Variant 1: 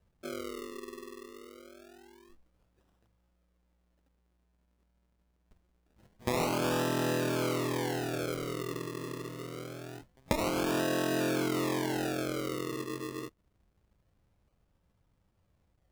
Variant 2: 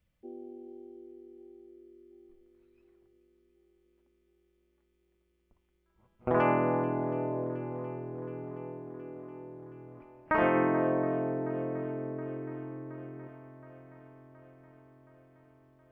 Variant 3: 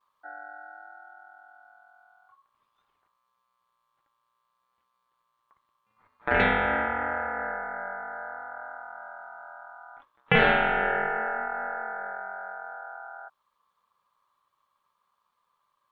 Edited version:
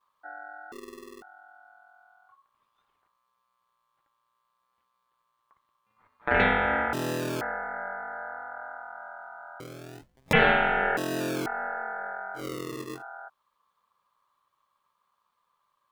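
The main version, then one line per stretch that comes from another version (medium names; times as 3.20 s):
3
0.72–1.22 s: from 1
6.93–7.41 s: from 1
9.60–10.33 s: from 1
10.97–11.46 s: from 1
12.39–12.98 s: from 1, crossfade 0.10 s
not used: 2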